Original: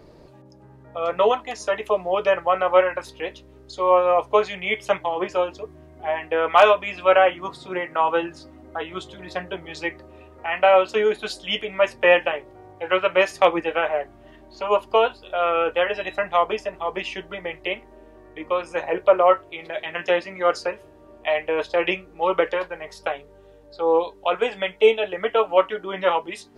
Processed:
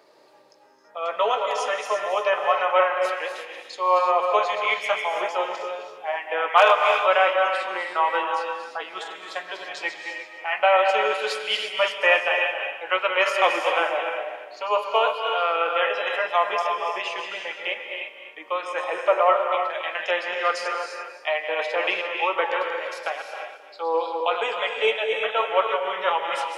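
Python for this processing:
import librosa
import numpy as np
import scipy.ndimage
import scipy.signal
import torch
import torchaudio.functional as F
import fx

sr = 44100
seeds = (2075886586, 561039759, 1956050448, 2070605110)

y = fx.reverse_delay_fb(x, sr, ms=133, feedback_pct=45, wet_db=-7)
y = scipy.signal.sosfilt(scipy.signal.butter(2, 700.0, 'highpass', fs=sr, output='sos'), y)
y = fx.rev_gated(y, sr, seeds[0], gate_ms=370, shape='rising', drr_db=4.5)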